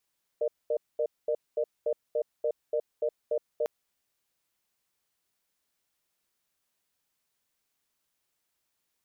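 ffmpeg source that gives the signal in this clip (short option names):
-f lavfi -i "aevalsrc='0.0422*(sin(2*PI*467*t)+sin(2*PI*603*t))*clip(min(mod(t,0.29),0.07-mod(t,0.29))/0.005,0,1)':d=3.25:s=44100"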